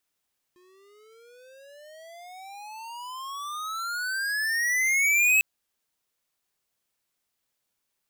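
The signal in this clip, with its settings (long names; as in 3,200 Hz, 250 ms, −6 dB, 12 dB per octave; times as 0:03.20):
pitch glide with a swell square, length 4.85 s, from 355 Hz, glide +34.5 semitones, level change +39 dB, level −19 dB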